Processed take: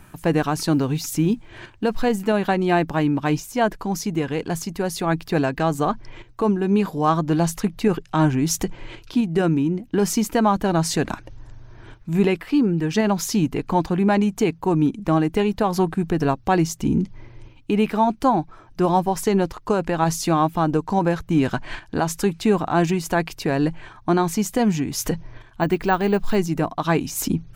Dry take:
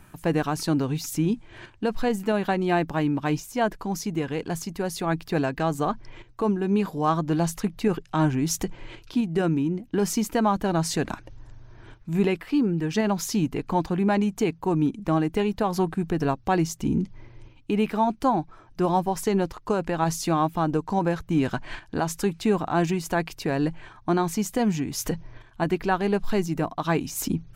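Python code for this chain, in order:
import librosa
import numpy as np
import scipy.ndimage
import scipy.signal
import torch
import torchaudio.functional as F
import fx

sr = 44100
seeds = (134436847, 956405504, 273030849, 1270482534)

y = fx.quant_float(x, sr, bits=6, at=(0.71, 2.17))
y = fx.resample_bad(y, sr, factor=2, down='none', up='hold', at=(25.61, 26.36))
y = y * librosa.db_to_amplitude(4.0)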